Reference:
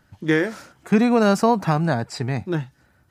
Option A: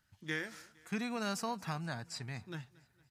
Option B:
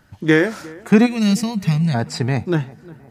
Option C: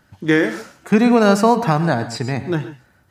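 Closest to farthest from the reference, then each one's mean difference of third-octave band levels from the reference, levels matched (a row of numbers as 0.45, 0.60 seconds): C, B, A; 2.5, 4.0, 6.0 decibels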